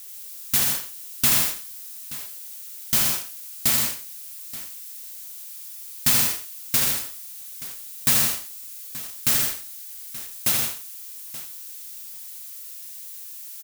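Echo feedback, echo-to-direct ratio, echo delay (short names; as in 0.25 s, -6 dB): no steady repeat, -1.5 dB, 80 ms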